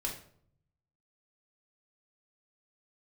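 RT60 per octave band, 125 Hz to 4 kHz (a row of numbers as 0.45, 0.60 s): 1.3, 0.80, 0.65, 0.55, 0.45, 0.40 s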